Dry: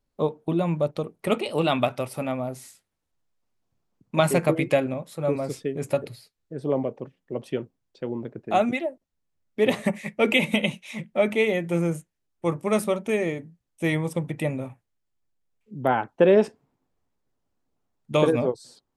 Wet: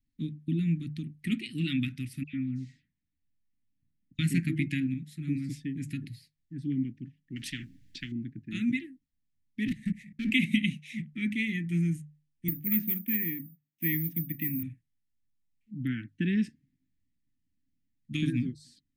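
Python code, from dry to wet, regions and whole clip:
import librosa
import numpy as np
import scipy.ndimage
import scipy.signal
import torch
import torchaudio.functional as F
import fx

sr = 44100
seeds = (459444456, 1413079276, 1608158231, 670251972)

y = fx.chain(x, sr, fx.air_absorb(metres=180.0),
    fx.dispersion(late='lows', ms=102.0, hz=2300.0), at=(2.23, 4.19))
y = fx.chain(y, sr, fx.high_shelf(hz=4700.0, db=-5.5),
    fx.spectral_comp(ratio=4.0), at=(7.36, 8.12))
y = fx.chain(y, sr, fx.low_shelf(hz=230.0, db=10.0),
    fx.level_steps(step_db=23),
    fx.clip_hard(threshold_db=-23.0), at=(9.67, 10.3))
y = fx.chain(y, sr, fx.bandpass_edges(low_hz=180.0, high_hz=2400.0),
    fx.resample_bad(factor=3, down='none', up='zero_stuff'), at=(12.48, 14.63))
y = scipy.signal.sosfilt(scipy.signal.cheby1(4, 1.0, [290.0, 1800.0], 'bandstop', fs=sr, output='sos'), y)
y = fx.high_shelf(y, sr, hz=2300.0, db=-9.0)
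y = fx.hum_notches(y, sr, base_hz=50, count=3)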